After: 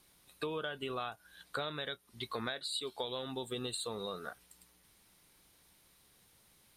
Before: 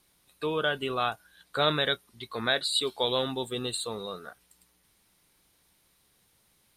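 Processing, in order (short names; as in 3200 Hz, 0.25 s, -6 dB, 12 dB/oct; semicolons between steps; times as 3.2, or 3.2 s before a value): compressor 12:1, threshold -36 dBFS, peak gain reduction 17.5 dB; gain +1 dB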